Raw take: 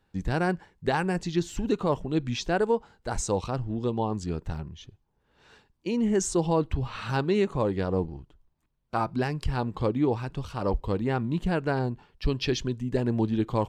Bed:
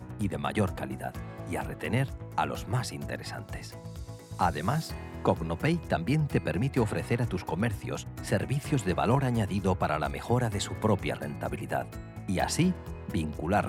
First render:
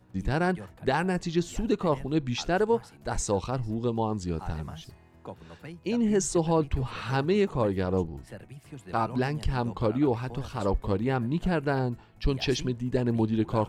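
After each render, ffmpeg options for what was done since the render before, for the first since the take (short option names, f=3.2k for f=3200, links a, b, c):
-filter_complex "[1:a]volume=-16dB[a];[0:a][a]amix=inputs=2:normalize=0"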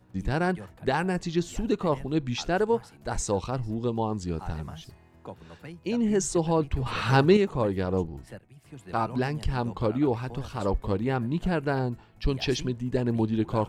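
-filter_complex "[0:a]asettb=1/sr,asplit=3[a][b][c];[a]atrim=end=6.864[d];[b]atrim=start=6.86:end=7.37,asetpts=PTS-STARTPTS,afade=t=in:d=0.004:c=qsin,afade=t=out:st=0.506:d=0.004:c=qsin,acontrast=75[e];[c]atrim=start=7.366[f];[d][e]acrossfade=d=0.004:c1=hsin:c2=qsin[g];[g][f]acrossfade=d=0.004:c1=qsin:c2=hsin,asplit=2[h][i];[h]atrim=end=8.39,asetpts=PTS-STARTPTS,afade=t=out:st=8.386:d=0.004:c=hsin:silence=0.177828[j];[i]atrim=start=8.39,asetpts=PTS-STARTPTS,afade=t=in:d=0.45:silence=0.177828[k];[j][k]concat=n=2:v=0:a=1"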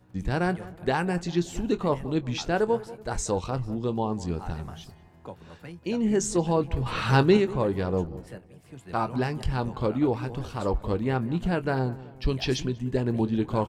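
-filter_complex "[0:a]asplit=2[a][b];[b]adelay=23,volume=-13.5dB[c];[a][c]amix=inputs=2:normalize=0,asplit=2[d][e];[e]adelay=189,lowpass=f=1.5k:p=1,volume=-17dB,asplit=2[f][g];[g]adelay=189,lowpass=f=1.5k:p=1,volume=0.5,asplit=2[h][i];[i]adelay=189,lowpass=f=1.5k:p=1,volume=0.5,asplit=2[j][k];[k]adelay=189,lowpass=f=1.5k:p=1,volume=0.5[l];[d][f][h][j][l]amix=inputs=5:normalize=0"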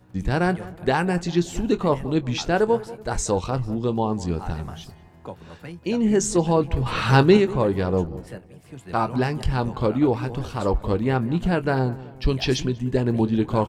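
-af "volume=4.5dB"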